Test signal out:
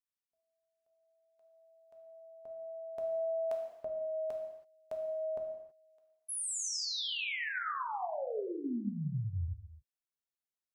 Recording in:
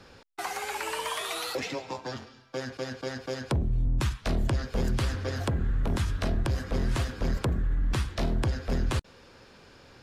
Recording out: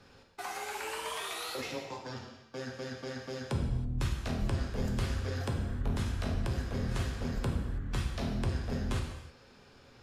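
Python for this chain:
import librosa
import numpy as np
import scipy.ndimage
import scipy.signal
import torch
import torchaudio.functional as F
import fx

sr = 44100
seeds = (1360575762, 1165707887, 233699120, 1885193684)

y = fx.rev_gated(x, sr, seeds[0], gate_ms=350, shape='falling', drr_db=1.0)
y = y * 10.0 ** (-7.5 / 20.0)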